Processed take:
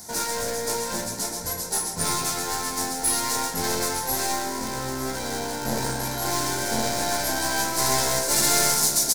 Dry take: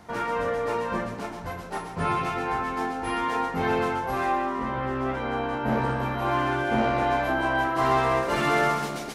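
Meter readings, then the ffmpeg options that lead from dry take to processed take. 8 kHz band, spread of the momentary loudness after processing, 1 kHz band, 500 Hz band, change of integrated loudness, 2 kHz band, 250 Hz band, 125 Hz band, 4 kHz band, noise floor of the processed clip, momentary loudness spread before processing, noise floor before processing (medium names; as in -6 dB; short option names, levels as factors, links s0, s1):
+24.5 dB, 10 LU, -3.5 dB, -3.0 dB, +2.5 dB, -2.0 dB, -2.5 dB, -2.5 dB, +12.0 dB, -32 dBFS, 7 LU, -37 dBFS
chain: -filter_complex "[0:a]aeval=exprs='clip(val(0),-1,0.0237)':c=same,asuperstop=centerf=1200:order=4:qfactor=5.8,aexciter=amount=12.3:drive=7.1:freq=4400,asplit=2[s0][s1];[s1]aecho=0:1:902:0.178[s2];[s0][s2]amix=inputs=2:normalize=0"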